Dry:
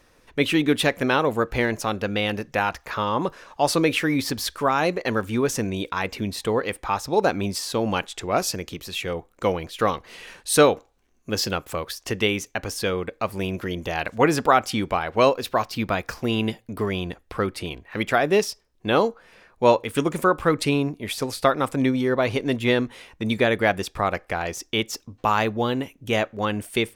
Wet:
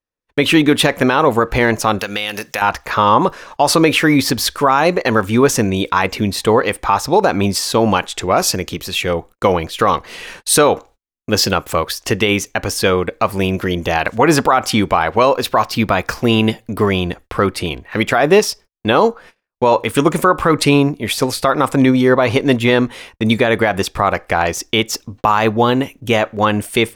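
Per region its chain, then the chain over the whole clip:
1.99–2.62 tilt +3.5 dB/oct + compressor 3:1, threshold -29 dBFS
whole clip: gate -46 dBFS, range -42 dB; dynamic EQ 1000 Hz, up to +5 dB, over -32 dBFS, Q 1.3; maximiser +11 dB; gain -1 dB

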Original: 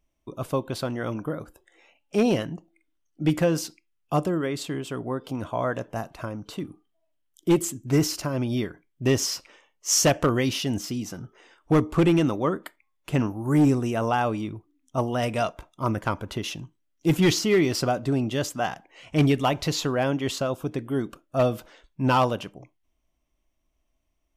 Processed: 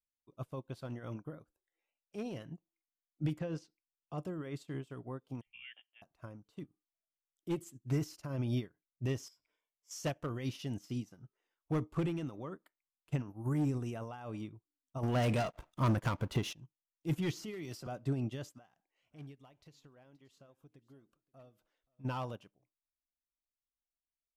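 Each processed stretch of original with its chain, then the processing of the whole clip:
3.39–4.18 LPF 5400 Hz + bell 440 Hz +4.5 dB 0.32 oct
5.41–6.02 HPF 510 Hz 6 dB/oct + inverted band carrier 3400 Hz + three-band expander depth 100%
9.28–9.91 ripple EQ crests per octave 1.7, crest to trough 10 dB + compressor 2.5:1, threshold -41 dBFS
15.03–16.53 upward compressor, threshold -28 dBFS + sample leveller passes 3
17.33–17.87 high shelf 6400 Hz +7.5 dB + three-band squash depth 40%
18.58–22.05 compressor 4:1, threshold -36 dBFS + echo 0.527 s -17.5 dB
whole clip: limiter -22.5 dBFS; dynamic EQ 130 Hz, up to +6 dB, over -44 dBFS, Q 2; upward expander 2.5:1, over -41 dBFS; gain -3.5 dB

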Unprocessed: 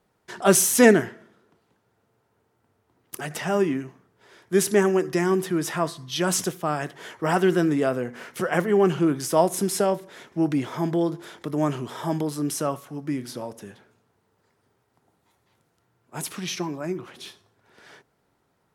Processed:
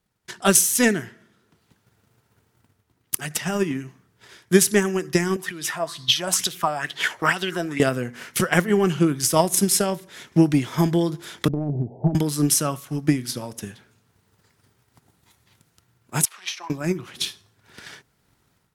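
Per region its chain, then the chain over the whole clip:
5.36–7.8 low shelf 190 Hz -8 dB + compressor 2:1, threshold -36 dBFS + LFO bell 2.2 Hz 610–4100 Hz +15 dB
11.48–12.15 steep low-pass 800 Hz 96 dB/oct + compressor 12:1, threshold -26 dBFS + low shelf 73 Hz +9 dB
16.25–16.7 de-esser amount 55% + HPF 740 Hz 24 dB/oct + tilt -4.5 dB/oct
whole clip: bell 580 Hz -12 dB 2.9 oct; transient shaper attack +10 dB, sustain -2 dB; AGC gain up to 11.5 dB; gain -1 dB

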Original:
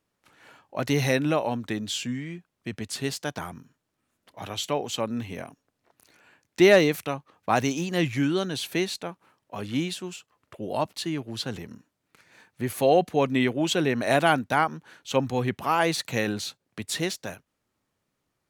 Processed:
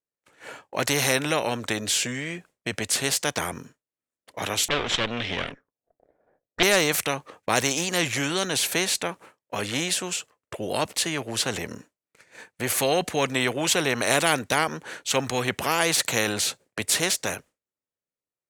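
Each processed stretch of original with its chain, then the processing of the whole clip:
4.68–6.63 minimum comb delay 0.54 ms + envelope low-pass 620–3200 Hz up, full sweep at -35 dBFS
whole clip: expander -49 dBFS; graphic EQ 500/2000/8000 Hz +9/+5/+9 dB; spectral compressor 2:1; gain -5 dB

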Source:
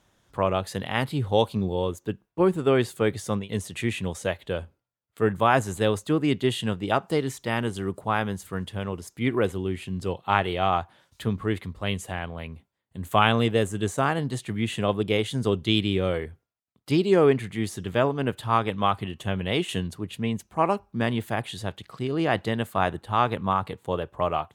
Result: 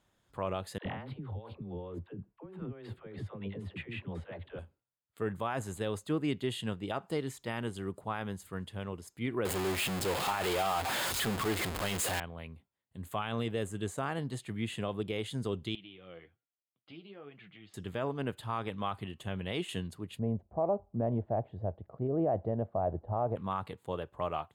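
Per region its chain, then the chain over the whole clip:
0.78–4.59 negative-ratio compressor -32 dBFS + air absorption 450 m + dispersion lows, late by 76 ms, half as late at 480 Hz
9.45–12.2 zero-crossing step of -18 dBFS + low shelf 190 Hz -10 dB
15.75–17.74 compressor 5:1, threshold -28 dBFS + flange 1.2 Hz, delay 4.5 ms, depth 7.7 ms, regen +38% + speaker cabinet 210–3400 Hz, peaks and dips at 240 Hz -10 dB, 400 Hz -9 dB, 570 Hz -5 dB, 950 Hz -10 dB, 1800 Hz -5 dB, 3100 Hz +3 dB
20.19–23.36 synth low-pass 640 Hz, resonance Q 3.7 + bell 72 Hz +11 dB 1.4 oct
whole clip: notch 5800 Hz, Q 8.1; limiter -13.5 dBFS; gain -8.5 dB

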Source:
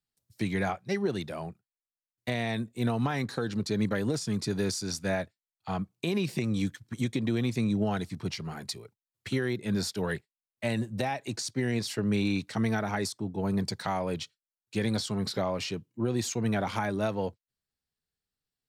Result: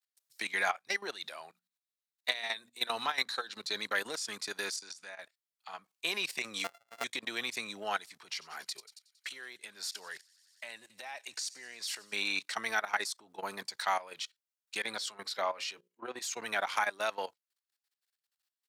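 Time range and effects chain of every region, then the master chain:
1.12–3.9 bell 3900 Hz +8.5 dB 0.26 oct + notches 60/120/180/240 Hz
4.76–5.19 LPF 10000 Hz 24 dB/oct + compressor 20:1, threshold -40 dBFS
6.64–7.04 sample sorter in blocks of 64 samples + high shelf 2000 Hz -11 dB
8.25–12.13 compressor 2:1, threshold -38 dBFS + thin delay 92 ms, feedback 76%, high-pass 4100 Hz, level -15 dB
14.82–16.22 high shelf 4300 Hz -3.5 dB + notches 60/120/180/240/300/360/420/480/540 Hz + three-band expander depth 70%
whole clip: level quantiser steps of 15 dB; HPF 1100 Hz 12 dB/oct; gain +8 dB

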